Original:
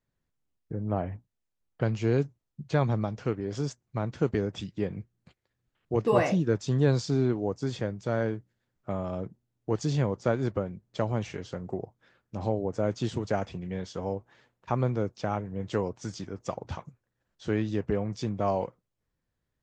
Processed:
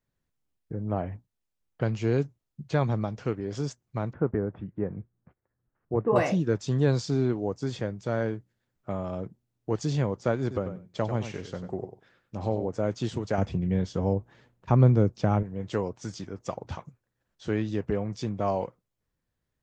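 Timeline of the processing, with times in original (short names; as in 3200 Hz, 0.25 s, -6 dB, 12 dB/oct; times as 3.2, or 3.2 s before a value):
4.13–6.16 LPF 1600 Hz 24 dB/oct
10.41–12.69 feedback echo 94 ms, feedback 15%, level -9.5 dB
13.38–15.43 low shelf 350 Hz +11.5 dB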